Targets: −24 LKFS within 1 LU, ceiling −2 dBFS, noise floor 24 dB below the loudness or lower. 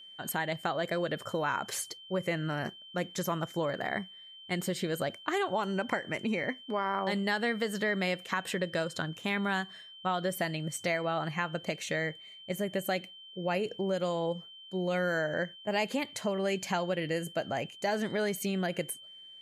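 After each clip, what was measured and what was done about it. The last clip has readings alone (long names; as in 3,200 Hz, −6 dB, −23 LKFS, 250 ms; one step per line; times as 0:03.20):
interfering tone 3,100 Hz; level of the tone −48 dBFS; integrated loudness −33.0 LKFS; sample peak −15.5 dBFS; target loudness −24.0 LKFS
→ notch filter 3,100 Hz, Q 30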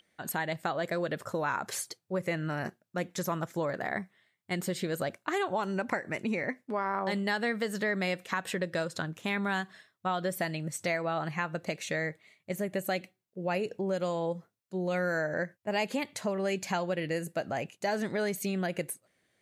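interfering tone none found; integrated loudness −33.0 LKFS; sample peak −15.5 dBFS; target loudness −24.0 LKFS
→ level +9 dB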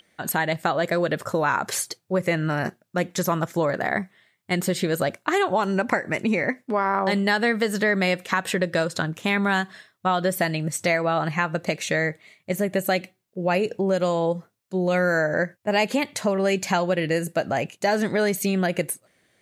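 integrated loudness −24.0 LKFS; sample peak −6.5 dBFS; background noise floor −70 dBFS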